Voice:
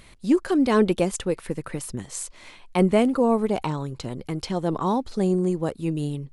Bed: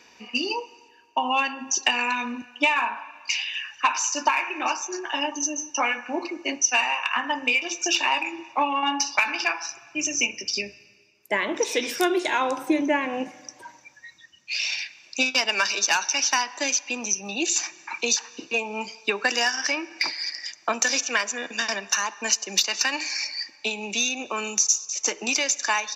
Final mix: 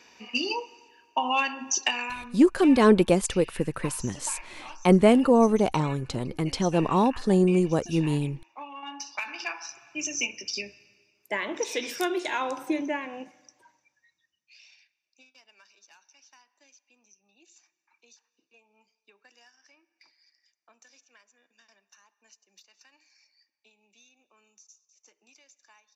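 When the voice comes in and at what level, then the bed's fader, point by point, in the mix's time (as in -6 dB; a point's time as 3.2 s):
2.10 s, +1.5 dB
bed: 1.77 s -2 dB
2.57 s -19 dB
8.54 s -19 dB
9.8 s -5.5 dB
12.75 s -5.5 dB
15.22 s -35.5 dB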